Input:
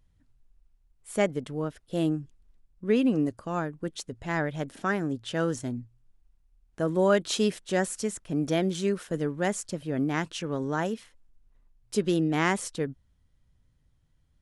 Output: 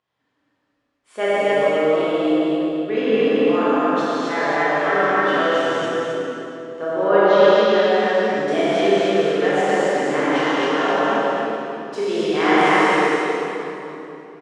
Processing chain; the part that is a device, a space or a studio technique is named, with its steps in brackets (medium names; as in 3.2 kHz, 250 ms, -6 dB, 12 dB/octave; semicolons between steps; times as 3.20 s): station announcement (band-pass 440–3800 Hz; peaking EQ 1.1 kHz +4.5 dB 0.29 oct; loudspeakers at several distances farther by 11 m -9 dB, 92 m -3 dB; reverberation RT60 3.3 s, pre-delay 20 ms, DRR -3 dB); 6.91–8.48 s: distance through air 170 m; gated-style reverb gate 300 ms flat, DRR -6.5 dB